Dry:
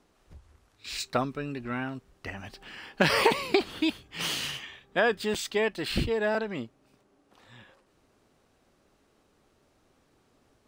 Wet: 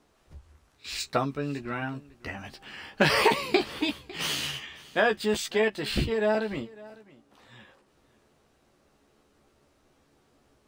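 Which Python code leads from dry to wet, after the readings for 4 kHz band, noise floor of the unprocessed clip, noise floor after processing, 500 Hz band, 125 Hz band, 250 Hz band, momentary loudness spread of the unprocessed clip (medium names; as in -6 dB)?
+1.0 dB, -68 dBFS, -66 dBFS, +1.5 dB, +1.5 dB, +1.0 dB, 17 LU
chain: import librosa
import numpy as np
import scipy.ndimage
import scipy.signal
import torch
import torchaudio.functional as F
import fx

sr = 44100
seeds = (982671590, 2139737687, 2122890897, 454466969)

y = fx.doubler(x, sr, ms=14.0, db=-5)
y = y + 10.0 ** (-21.0 / 20.0) * np.pad(y, (int(552 * sr / 1000.0), 0))[:len(y)]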